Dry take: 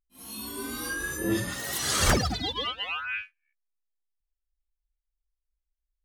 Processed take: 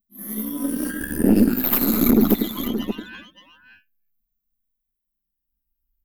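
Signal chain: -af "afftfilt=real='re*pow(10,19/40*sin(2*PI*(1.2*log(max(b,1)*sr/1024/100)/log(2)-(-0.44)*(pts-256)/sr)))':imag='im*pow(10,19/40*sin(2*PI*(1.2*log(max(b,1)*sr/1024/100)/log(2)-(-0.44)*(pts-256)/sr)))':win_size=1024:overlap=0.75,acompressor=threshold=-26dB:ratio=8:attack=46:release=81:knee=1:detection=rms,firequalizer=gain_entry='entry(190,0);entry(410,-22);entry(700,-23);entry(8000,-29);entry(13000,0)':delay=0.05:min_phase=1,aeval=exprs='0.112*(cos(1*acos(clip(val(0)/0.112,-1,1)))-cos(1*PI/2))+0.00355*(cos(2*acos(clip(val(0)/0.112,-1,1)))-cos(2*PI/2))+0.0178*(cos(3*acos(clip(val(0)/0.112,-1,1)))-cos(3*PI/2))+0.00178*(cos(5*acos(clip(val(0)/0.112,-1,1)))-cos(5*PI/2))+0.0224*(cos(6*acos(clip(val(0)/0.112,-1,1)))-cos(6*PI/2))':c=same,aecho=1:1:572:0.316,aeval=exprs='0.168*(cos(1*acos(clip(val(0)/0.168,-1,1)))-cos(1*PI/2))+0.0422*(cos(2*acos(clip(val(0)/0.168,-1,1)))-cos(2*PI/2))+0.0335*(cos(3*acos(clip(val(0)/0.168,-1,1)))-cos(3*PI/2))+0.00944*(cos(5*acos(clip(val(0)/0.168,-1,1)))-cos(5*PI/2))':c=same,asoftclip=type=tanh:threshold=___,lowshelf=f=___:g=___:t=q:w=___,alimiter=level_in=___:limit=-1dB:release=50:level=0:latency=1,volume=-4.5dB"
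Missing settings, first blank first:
-17.5dB, 170, -11.5, 3, 25.5dB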